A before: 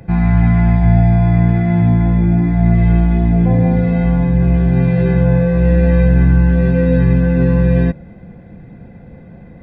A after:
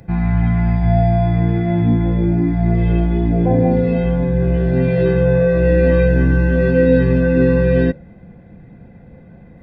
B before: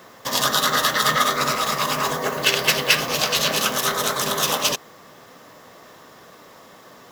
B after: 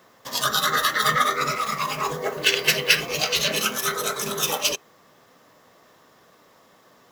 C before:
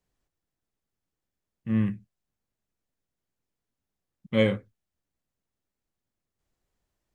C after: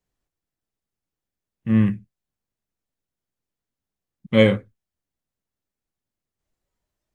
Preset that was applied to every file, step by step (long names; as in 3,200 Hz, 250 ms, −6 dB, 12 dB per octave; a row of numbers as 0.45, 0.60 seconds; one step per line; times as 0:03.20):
noise reduction from a noise print of the clip's start 9 dB
normalise the peak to −2 dBFS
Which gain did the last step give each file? +5.0, 0.0, +7.5 decibels